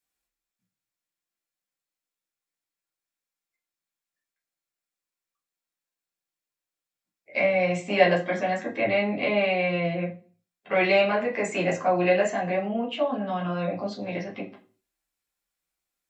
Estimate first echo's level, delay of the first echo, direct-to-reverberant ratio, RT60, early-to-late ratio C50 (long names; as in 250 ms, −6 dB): no echo audible, no echo audible, −3.5 dB, 0.40 s, 11.0 dB